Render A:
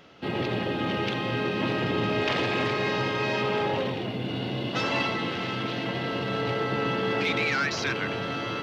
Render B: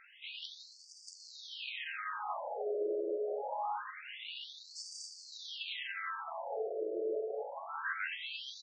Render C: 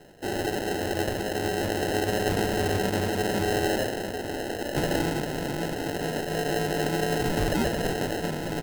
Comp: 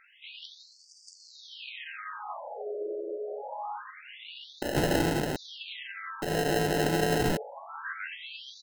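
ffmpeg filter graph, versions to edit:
-filter_complex "[2:a]asplit=2[s0][s1];[1:a]asplit=3[s2][s3][s4];[s2]atrim=end=4.622[s5];[s0]atrim=start=4.618:end=5.362[s6];[s3]atrim=start=5.358:end=6.222[s7];[s1]atrim=start=6.218:end=7.372[s8];[s4]atrim=start=7.368[s9];[s5][s6]acrossfade=d=0.004:c1=hsin:c2=hsin[s10];[s10][s7]acrossfade=d=0.004:c1=hsin:c2=hsin[s11];[s11][s8]acrossfade=d=0.004:c1=hsin:c2=hsin[s12];[s12][s9]acrossfade=d=0.004:c1=hsin:c2=hsin"

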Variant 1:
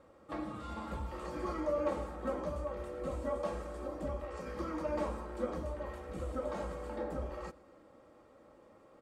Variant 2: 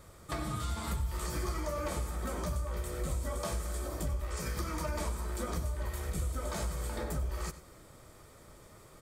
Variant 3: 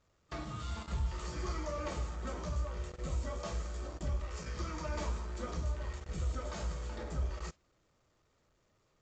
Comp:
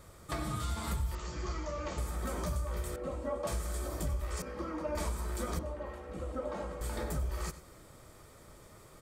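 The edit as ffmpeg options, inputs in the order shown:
-filter_complex "[0:a]asplit=3[s0][s1][s2];[1:a]asplit=5[s3][s4][s5][s6][s7];[s3]atrim=end=1.152[s8];[2:a]atrim=start=1.148:end=1.982[s9];[s4]atrim=start=1.978:end=2.962[s10];[s0]atrim=start=2.958:end=3.472[s11];[s5]atrim=start=3.468:end=4.422[s12];[s1]atrim=start=4.418:end=4.952[s13];[s6]atrim=start=4.948:end=5.592[s14];[s2]atrim=start=5.588:end=6.812[s15];[s7]atrim=start=6.808[s16];[s8][s9]acrossfade=d=0.004:c1=hsin:c2=hsin[s17];[s17][s10]acrossfade=d=0.004:c1=hsin:c2=hsin[s18];[s18][s11]acrossfade=d=0.004:c1=hsin:c2=hsin[s19];[s19][s12]acrossfade=d=0.004:c1=hsin:c2=hsin[s20];[s20][s13]acrossfade=d=0.004:c1=hsin:c2=hsin[s21];[s21][s14]acrossfade=d=0.004:c1=hsin:c2=hsin[s22];[s22][s15]acrossfade=d=0.004:c1=hsin:c2=hsin[s23];[s23][s16]acrossfade=d=0.004:c1=hsin:c2=hsin"

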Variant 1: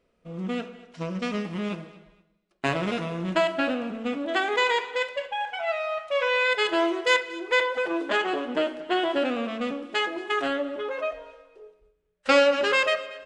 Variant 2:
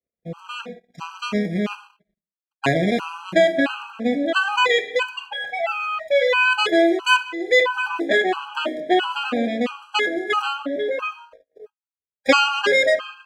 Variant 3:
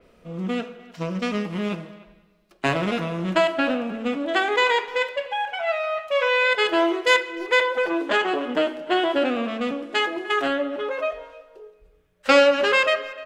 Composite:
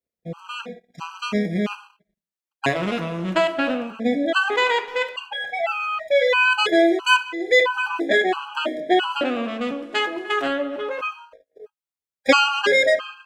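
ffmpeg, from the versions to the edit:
-filter_complex "[2:a]asplit=3[s0][s1][s2];[1:a]asplit=4[s3][s4][s5][s6];[s3]atrim=end=2.81[s7];[s0]atrim=start=2.65:end=3.98[s8];[s4]atrim=start=3.82:end=4.502[s9];[s1]atrim=start=4.498:end=5.162[s10];[s5]atrim=start=5.158:end=9.212[s11];[s2]atrim=start=9.208:end=11.012[s12];[s6]atrim=start=11.008[s13];[s7][s8]acrossfade=d=0.16:c1=tri:c2=tri[s14];[s14][s9]acrossfade=d=0.16:c1=tri:c2=tri[s15];[s15][s10]acrossfade=d=0.004:c1=hsin:c2=hsin[s16];[s16][s11]acrossfade=d=0.004:c1=hsin:c2=hsin[s17];[s17][s12]acrossfade=d=0.004:c1=hsin:c2=hsin[s18];[s18][s13]acrossfade=d=0.004:c1=hsin:c2=hsin"

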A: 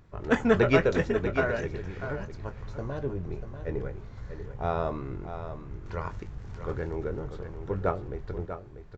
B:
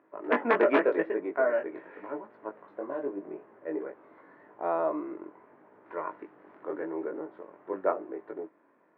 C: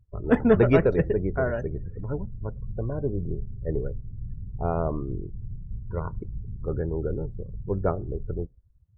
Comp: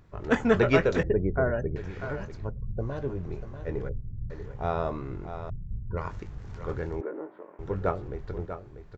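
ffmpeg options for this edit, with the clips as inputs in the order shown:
-filter_complex "[2:a]asplit=4[s0][s1][s2][s3];[0:a]asplit=6[s4][s5][s6][s7][s8][s9];[s4]atrim=end=1.032[s10];[s0]atrim=start=1.028:end=1.762[s11];[s5]atrim=start=1.758:end=2.52[s12];[s1]atrim=start=2.36:end=2.93[s13];[s6]atrim=start=2.77:end=3.892[s14];[s2]atrim=start=3.888:end=4.302[s15];[s7]atrim=start=4.298:end=5.502[s16];[s3]atrim=start=5.498:end=5.972[s17];[s8]atrim=start=5.968:end=7.012[s18];[1:a]atrim=start=7.008:end=7.592[s19];[s9]atrim=start=7.588[s20];[s10][s11]acrossfade=d=0.004:c1=hsin:c2=hsin[s21];[s21][s12]acrossfade=d=0.004:c1=hsin:c2=hsin[s22];[s22][s13]acrossfade=d=0.16:c1=tri:c2=tri[s23];[s23][s14]acrossfade=d=0.16:c1=tri:c2=tri[s24];[s24][s15]acrossfade=d=0.004:c1=hsin:c2=hsin[s25];[s25][s16]acrossfade=d=0.004:c1=hsin:c2=hsin[s26];[s26][s17]acrossfade=d=0.004:c1=hsin:c2=hsin[s27];[s27][s18]acrossfade=d=0.004:c1=hsin:c2=hsin[s28];[s28][s19]acrossfade=d=0.004:c1=hsin:c2=hsin[s29];[s29][s20]acrossfade=d=0.004:c1=hsin:c2=hsin"

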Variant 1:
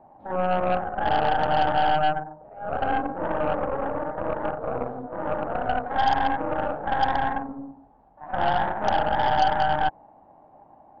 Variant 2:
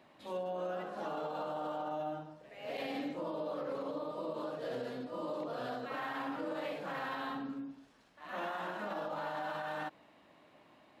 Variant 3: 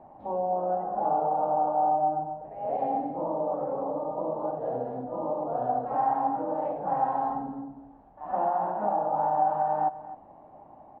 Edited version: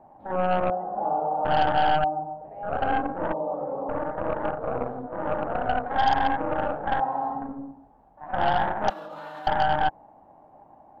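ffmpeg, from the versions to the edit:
-filter_complex "[2:a]asplit=4[s0][s1][s2][s3];[0:a]asplit=6[s4][s5][s6][s7][s8][s9];[s4]atrim=end=0.702[s10];[s0]atrim=start=0.698:end=1.452[s11];[s5]atrim=start=1.448:end=2.042[s12];[s1]atrim=start=2.038:end=2.632[s13];[s6]atrim=start=2.628:end=3.332[s14];[s2]atrim=start=3.328:end=3.892[s15];[s7]atrim=start=3.888:end=7.002[s16];[s3]atrim=start=6.998:end=7.422[s17];[s8]atrim=start=7.418:end=8.902[s18];[1:a]atrim=start=8.898:end=9.472[s19];[s9]atrim=start=9.468[s20];[s10][s11]acrossfade=d=0.004:c1=hsin:c2=hsin[s21];[s21][s12]acrossfade=d=0.004:c1=hsin:c2=hsin[s22];[s22][s13]acrossfade=d=0.004:c1=hsin:c2=hsin[s23];[s23][s14]acrossfade=d=0.004:c1=hsin:c2=hsin[s24];[s24][s15]acrossfade=d=0.004:c1=hsin:c2=hsin[s25];[s25][s16]acrossfade=d=0.004:c1=hsin:c2=hsin[s26];[s26][s17]acrossfade=d=0.004:c1=hsin:c2=hsin[s27];[s27][s18]acrossfade=d=0.004:c1=hsin:c2=hsin[s28];[s28][s19]acrossfade=d=0.004:c1=hsin:c2=hsin[s29];[s29][s20]acrossfade=d=0.004:c1=hsin:c2=hsin"

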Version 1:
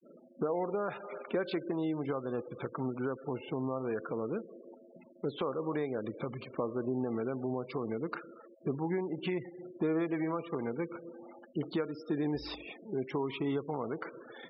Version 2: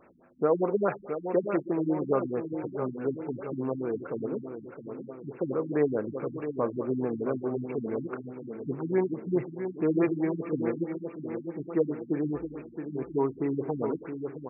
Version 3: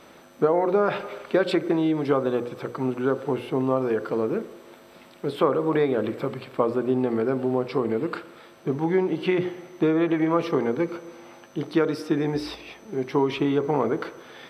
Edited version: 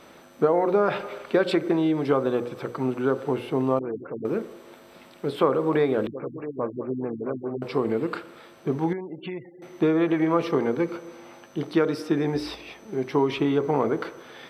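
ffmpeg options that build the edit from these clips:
-filter_complex "[1:a]asplit=2[s0][s1];[2:a]asplit=4[s2][s3][s4][s5];[s2]atrim=end=3.792[s6];[s0]atrim=start=3.788:end=4.252[s7];[s3]atrim=start=4.248:end=6.072[s8];[s1]atrim=start=6.068:end=7.622[s9];[s4]atrim=start=7.618:end=8.932[s10];[0:a]atrim=start=8.928:end=9.622[s11];[s5]atrim=start=9.618[s12];[s6][s7]acrossfade=d=0.004:c1=hsin:c2=hsin[s13];[s13][s8]acrossfade=d=0.004:c1=hsin:c2=hsin[s14];[s14][s9]acrossfade=d=0.004:c1=hsin:c2=hsin[s15];[s15][s10]acrossfade=d=0.004:c1=hsin:c2=hsin[s16];[s16][s11]acrossfade=d=0.004:c1=hsin:c2=hsin[s17];[s17][s12]acrossfade=d=0.004:c1=hsin:c2=hsin"

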